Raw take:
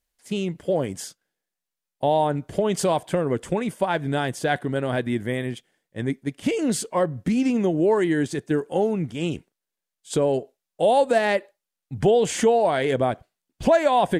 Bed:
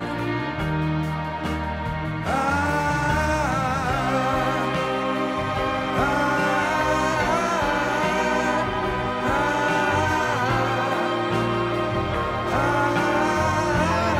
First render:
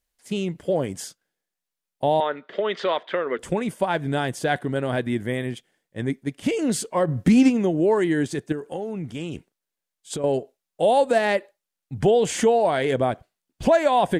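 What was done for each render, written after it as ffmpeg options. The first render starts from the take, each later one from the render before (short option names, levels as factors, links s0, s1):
-filter_complex "[0:a]asettb=1/sr,asplit=3[s0][s1][s2];[s0]atrim=end=2.204[s3];[s1]atrim=start=2.2:end=3.39,asetpts=PTS-STARTPTS,afade=t=in:d=0.004:c=qsin,afade=t=out:st=1.186:d=0.004:c=qsin,highpass=f=280:w=0.5412,highpass=f=280:w=1.3066,equalizer=f=300:t=q:w=4:g=-9,equalizer=f=760:t=q:w=4:g=-6,equalizer=f=1300:t=q:w=4:g=7,equalizer=f=1900:t=q:w=4:g=9,equalizer=f=3600:t=q:w=4:g=7,lowpass=f=3900:w=0.5412,lowpass=f=3900:w=1.3066[s4];[s2]atrim=start=3.386[s5];[s3][s4]acrossfade=d=0.004:c1=hsin:c2=qsin[s6];[s6][s5]acrossfade=d=0.004:c1=qsin:c2=hsin,asplit=3[s7][s8][s9];[s7]afade=t=out:st=7.07:d=0.02[s10];[s8]acontrast=73,afade=t=in:st=7.07:d=0.02,afade=t=out:st=7.48:d=0.02[s11];[s9]afade=t=in:st=7.48:d=0.02[s12];[s10][s11][s12]amix=inputs=3:normalize=0,asettb=1/sr,asplit=3[s13][s14][s15];[s13]atrim=end=8.524[s16];[s14]atrim=start=8.52:end=10.24,asetpts=PTS-STARTPTS,afade=t=in:d=0.004:c=qsin,afade=t=out:st=1.716:d=0.004:c=qsin,acompressor=threshold=0.0501:ratio=6:attack=3.2:release=140:knee=1:detection=peak[s17];[s15]atrim=start=10.236[s18];[s16][s17]acrossfade=d=0.004:c1=hsin:c2=qsin[s19];[s19][s18]acrossfade=d=0.004:c1=qsin:c2=hsin"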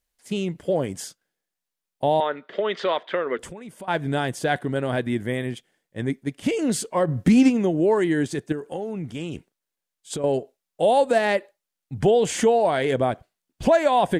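-filter_complex "[0:a]asettb=1/sr,asplit=3[s0][s1][s2];[s0]atrim=end=3.474[s3];[s1]atrim=start=3.47:end=3.88,asetpts=PTS-STARTPTS,afade=t=in:d=0.004:c=qsin,afade=t=out:st=0.406:d=0.004:c=qsin,acompressor=threshold=0.01:ratio=3:attack=3.2:release=140:knee=1:detection=peak[s4];[s2]atrim=start=3.876[s5];[s3][s4]acrossfade=d=0.004:c1=hsin:c2=qsin[s6];[s6][s5]acrossfade=d=0.004:c1=qsin:c2=hsin"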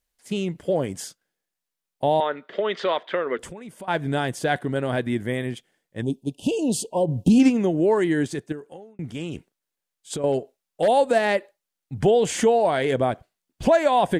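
-filter_complex "[0:a]asplit=3[s0][s1][s2];[s0]afade=t=out:st=6.01:d=0.02[s3];[s1]asuperstop=centerf=1600:order=20:qfactor=1,afade=t=in:st=6.01:d=0.02,afade=t=out:st=7.38:d=0.02[s4];[s2]afade=t=in:st=7.38:d=0.02[s5];[s3][s4][s5]amix=inputs=3:normalize=0,asettb=1/sr,asplit=3[s6][s7][s8];[s6]atrim=end=10.324[s9];[s7]atrim=start=10.32:end=10.88,asetpts=PTS-STARTPTS,afade=t=in:d=0.004:c=qsin,afade=t=out:st=0.556:d=0.004:c=qsin,asoftclip=type=hard:threshold=0.178[s10];[s8]atrim=start=10.876[s11];[s9][s10]acrossfade=d=0.004:c1=hsin:c2=qsin[s12];[s12][s11]acrossfade=d=0.004:c1=qsin:c2=hsin,asplit=2[s13][s14];[s13]atrim=end=8.99,asetpts=PTS-STARTPTS,afade=t=out:st=8.23:d=0.76[s15];[s14]atrim=start=8.99,asetpts=PTS-STARTPTS,afade=t=in:d=0.004:c=hsin[s16];[s15][s16]concat=n=2:v=0:a=1"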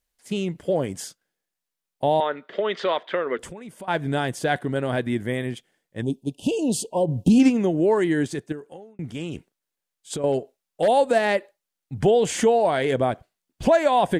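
-af anull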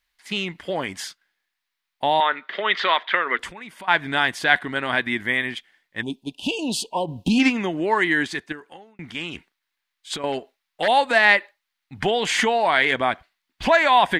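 -af "equalizer=f=125:t=o:w=1:g=-10,equalizer=f=500:t=o:w=1:g=-8,equalizer=f=1000:t=o:w=1:g=7,equalizer=f=2000:t=o:w=1:g=11,equalizer=f=4000:t=o:w=1:g=8,equalizer=f=8000:t=o:w=1:g=-4"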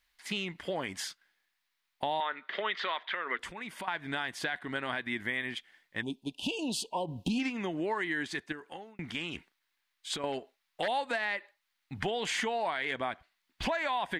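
-af "alimiter=limit=0.266:level=0:latency=1:release=241,acompressor=threshold=0.0126:ratio=2"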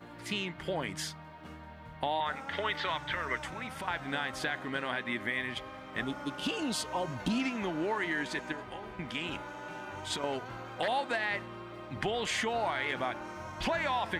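-filter_complex "[1:a]volume=0.0841[s0];[0:a][s0]amix=inputs=2:normalize=0"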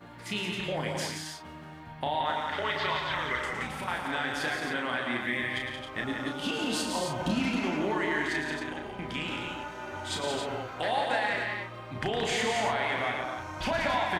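-filter_complex "[0:a]asplit=2[s0][s1];[s1]adelay=33,volume=0.562[s2];[s0][s2]amix=inputs=2:normalize=0,aecho=1:1:110.8|174.9|268.2:0.398|0.562|0.501"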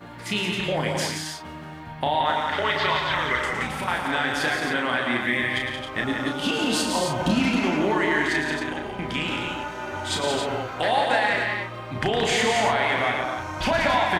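-af "volume=2.24"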